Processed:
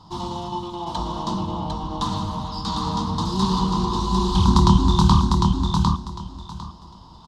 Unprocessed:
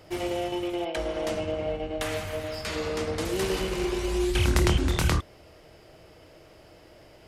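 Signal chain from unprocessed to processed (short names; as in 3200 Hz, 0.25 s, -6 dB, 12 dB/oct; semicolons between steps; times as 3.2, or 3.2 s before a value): EQ curve 120 Hz 0 dB, 200 Hz +9 dB, 320 Hz -7 dB, 590 Hz -19 dB, 990 Hz +15 dB, 1500 Hz -13 dB, 2300 Hz -25 dB, 3700 Hz +5 dB, 6500 Hz -4 dB, 13000 Hz -22 dB; feedback echo 0.752 s, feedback 21%, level -3.5 dB; dynamic EQ 190 Hz, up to +4 dB, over -38 dBFS, Q 0.89; gain +4.5 dB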